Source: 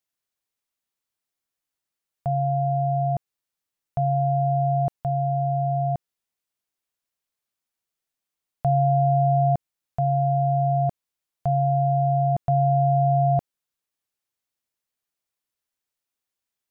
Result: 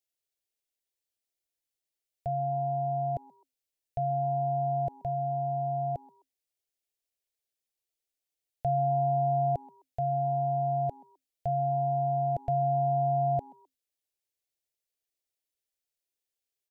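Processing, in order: fixed phaser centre 470 Hz, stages 4; on a send: frequency-shifting echo 0.129 s, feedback 33%, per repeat +130 Hz, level -24 dB; on the sum: gain -2.5 dB

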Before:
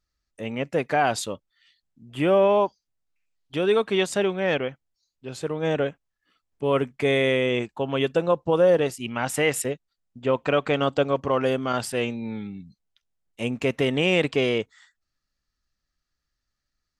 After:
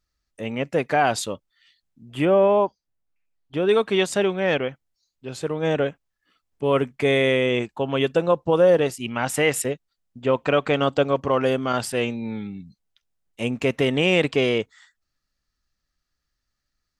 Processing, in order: 2.25–3.69 high shelf 2600 Hz -11 dB; gain +2 dB

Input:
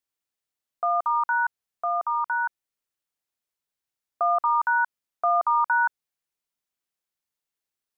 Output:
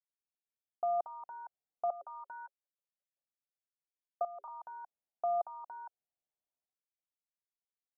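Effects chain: 1.9–4.48 rippled Chebyshev high-pass 390 Hz, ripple 9 dB; transient shaper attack +11 dB, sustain +7 dB; limiter -14 dBFS, peak gain reduction 10.5 dB; ladder low-pass 830 Hz, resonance 55%; level quantiser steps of 15 dB; gain -1 dB

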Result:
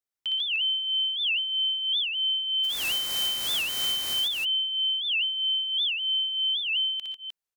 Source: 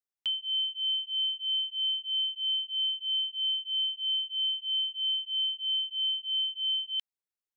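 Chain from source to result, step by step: 2.63–4.13 spectral contrast lowered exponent 0.33; tapped delay 60/120/130/145/306 ms -3.5/-13.5/-17/-5/-6 dB; record warp 78 rpm, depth 250 cents

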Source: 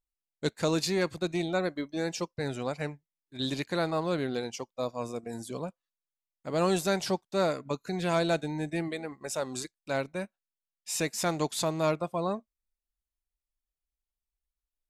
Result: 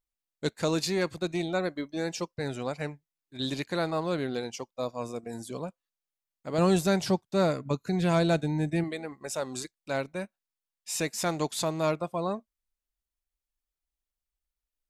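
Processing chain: 6.58–8.84 bell 93 Hz +9.5 dB 2.7 oct

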